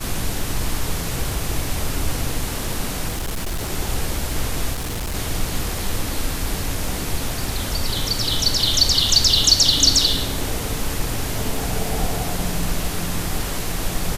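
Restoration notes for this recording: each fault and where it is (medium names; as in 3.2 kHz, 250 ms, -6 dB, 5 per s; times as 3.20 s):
crackle 15 per s -26 dBFS
3.08–3.70 s: clipped -21 dBFS
4.73–5.15 s: clipped -22.5 dBFS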